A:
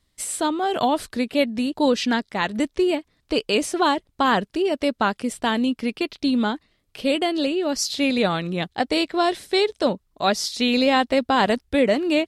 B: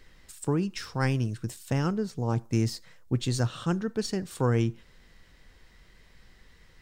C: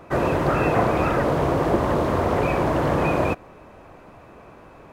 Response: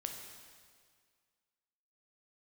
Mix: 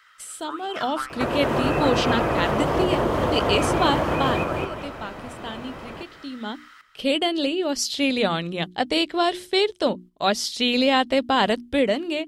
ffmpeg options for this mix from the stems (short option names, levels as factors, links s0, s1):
-filter_complex "[0:a]bandreject=f=60:t=h:w=6,bandreject=f=120:t=h:w=6,bandreject=f=180:t=h:w=6,bandreject=f=240:t=h:w=6,bandreject=f=300:t=h:w=6,bandreject=f=360:t=h:w=6,agate=range=0.398:threshold=0.01:ratio=16:detection=peak,volume=1.5,afade=t=out:st=4.17:d=0.21:silence=0.266073,afade=t=in:st=6.4:d=0.3:silence=0.223872[s0];[1:a]acrossover=split=2600[s1][s2];[s2]acompressor=threshold=0.002:ratio=4:attack=1:release=60[s3];[s1][s3]amix=inputs=2:normalize=0,highpass=f=1300:t=q:w=11,acompressor=threshold=0.0251:ratio=6,volume=0.944,asplit=2[s4][s5];[s5]volume=0.266[s6];[2:a]adelay=1100,volume=1.06,asplit=2[s7][s8];[s8]volume=0.211[s9];[s4][s7]amix=inputs=2:normalize=0,acrossover=split=240|640[s10][s11][s12];[s10]acompressor=threshold=0.0178:ratio=4[s13];[s11]acompressor=threshold=0.0282:ratio=4[s14];[s12]acompressor=threshold=0.0316:ratio=4[s15];[s13][s14][s15]amix=inputs=3:normalize=0,alimiter=limit=0.075:level=0:latency=1:release=415,volume=1[s16];[s6][s9]amix=inputs=2:normalize=0,aecho=0:1:216|432|648|864|1080:1|0.32|0.102|0.0328|0.0105[s17];[s0][s16][s17]amix=inputs=3:normalize=0,equalizer=f=3100:w=6:g=6.5,dynaudnorm=f=590:g=3:m=2.24"